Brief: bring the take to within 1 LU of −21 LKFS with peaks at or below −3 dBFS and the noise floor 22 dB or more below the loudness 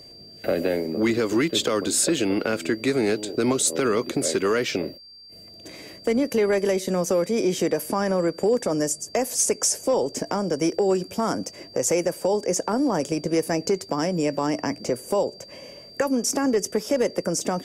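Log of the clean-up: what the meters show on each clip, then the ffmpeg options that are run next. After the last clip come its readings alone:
interfering tone 4,700 Hz; level of the tone −44 dBFS; integrated loudness −24.0 LKFS; sample peak −11.0 dBFS; target loudness −21.0 LKFS
→ -af "bandreject=frequency=4700:width=30"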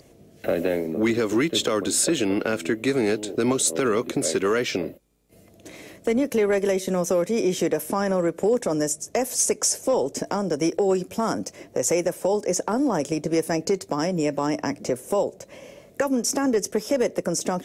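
interfering tone none found; integrated loudness −24.0 LKFS; sample peak −11.5 dBFS; target loudness −21.0 LKFS
→ -af "volume=3dB"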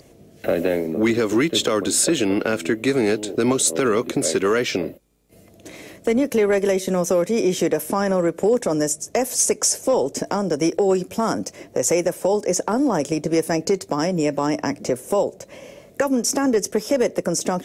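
integrated loudness −21.0 LKFS; sample peak −8.5 dBFS; background noise floor −49 dBFS

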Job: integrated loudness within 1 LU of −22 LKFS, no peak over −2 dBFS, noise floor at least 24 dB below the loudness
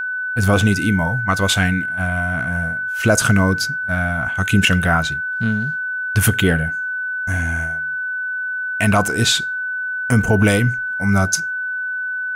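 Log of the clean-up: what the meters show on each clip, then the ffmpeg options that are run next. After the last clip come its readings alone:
interfering tone 1,500 Hz; level of the tone −21 dBFS; integrated loudness −18.5 LKFS; sample peak −3.5 dBFS; target loudness −22.0 LKFS
→ -af "bandreject=frequency=1500:width=30"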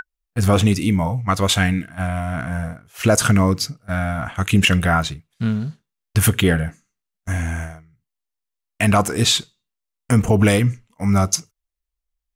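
interfering tone none found; integrated loudness −19.5 LKFS; sample peak −4.5 dBFS; target loudness −22.0 LKFS
→ -af "volume=-2.5dB"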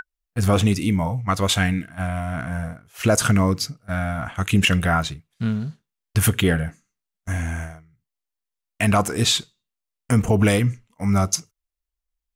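integrated loudness −22.0 LKFS; sample peak −7.0 dBFS; background noise floor −85 dBFS

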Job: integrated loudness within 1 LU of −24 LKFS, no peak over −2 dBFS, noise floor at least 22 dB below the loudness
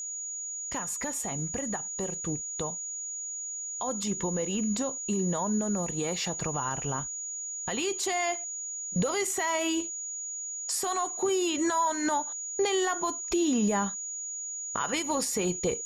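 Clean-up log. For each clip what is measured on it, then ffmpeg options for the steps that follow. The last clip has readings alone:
interfering tone 6,800 Hz; level of the tone −34 dBFS; integrated loudness −30.0 LKFS; sample peak −17.0 dBFS; target loudness −24.0 LKFS
→ -af "bandreject=frequency=6800:width=30"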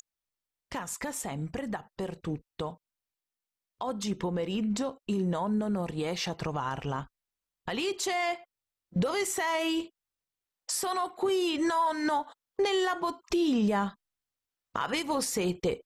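interfering tone none found; integrated loudness −31.0 LKFS; sample peak −18.5 dBFS; target loudness −24.0 LKFS
→ -af "volume=7dB"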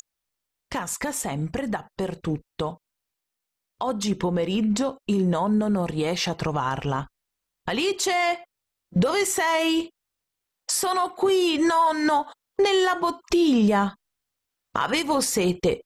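integrated loudness −24.0 LKFS; sample peak −11.5 dBFS; background noise floor −84 dBFS

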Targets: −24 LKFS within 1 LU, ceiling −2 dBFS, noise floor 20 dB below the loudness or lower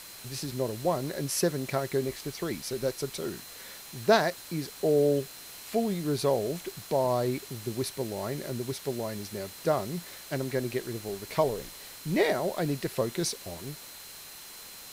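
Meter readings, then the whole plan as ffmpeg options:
interfering tone 4,100 Hz; level of the tone −52 dBFS; background noise floor −46 dBFS; target noise floor −51 dBFS; integrated loudness −30.5 LKFS; sample peak −9.0 dBFS; target loudness −24.0 LKFS
→ -af "bandreject=frequency=4100:width=30"
-af "afftdn=noise_reduction=6:noise_floor=-46"
-af "volume=6.5dB"

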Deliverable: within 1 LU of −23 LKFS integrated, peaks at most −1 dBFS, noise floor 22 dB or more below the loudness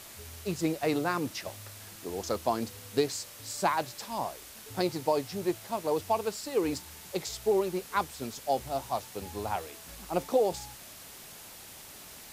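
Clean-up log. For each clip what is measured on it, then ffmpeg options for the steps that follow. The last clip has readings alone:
background noise floor −48 dBFS; target noise floor −54 dBFS; integrated loudness −32.0 LKFS; sample peak −12.5 dBFS; target loudness −23.0 LKFS
→ -af "afftdn=noise_reduction=6:noise_floor=-48"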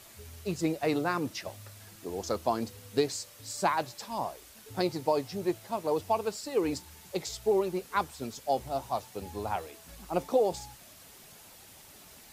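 background noise floor −53 dBFS; target noise floor −54 dBFS
→ -af "afftdn=noise_reduction=6:noise_floor=-53"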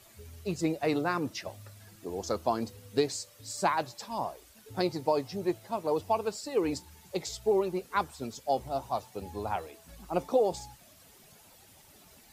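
background noise floor −57 dBFS; integrated loudness −32.5 LKFS; sample peak −12.5 dBFS; target loudness −23.0 LKFS
→ -af "volume=9.5dB"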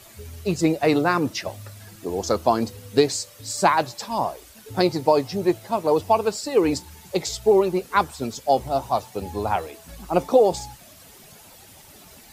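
integrated loudness −23.0 LKFS; sample peak −3.0 dBFS; background noise floor −48 dBFS

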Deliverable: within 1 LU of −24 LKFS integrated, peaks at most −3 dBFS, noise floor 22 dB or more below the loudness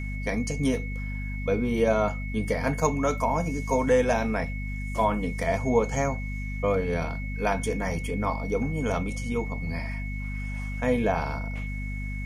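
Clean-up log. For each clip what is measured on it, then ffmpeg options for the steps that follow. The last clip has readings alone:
mains hum 50 Hz; hum harmonics up to 250 Hz; level of the hum −30 dBFS; interfering tone 2,200 Hz; level of the tone −39 dBFS; integrated loudness −27.5 LKFS; sample peak −9.0 dBFS; target loudness −24.0 LKFS
→ -af "bandreject=frequency=50:width_type=h:width=4,bandreject=frequency=100:width_type=h:width=4,bandreject=frequency=150:width_type=h:width=4,bandreject=frequency=200:width_type=h:width=4,bandreject=frequency=250:width_type=h:width=4"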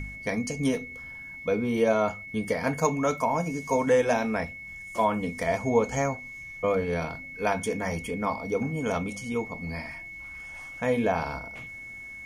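mains hum none found; interfering tone 2,200 Hz; level of the tone −39 dBFS
→ -af "bandreject=frequency=2200:width=30"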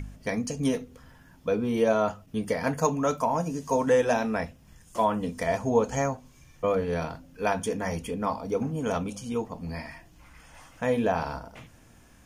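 interfering tone none found; integrated loudness −28.0 LKFS; sample peak −9.5 dBFS; target loudness −24.0 LKFS
→ -af "volume=4dB"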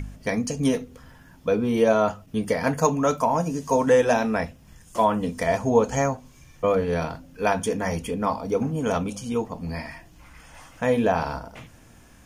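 integrated loudness −24.0 LKFS; sample peak −5.5 dBFS; background noise floor −51 dBFS

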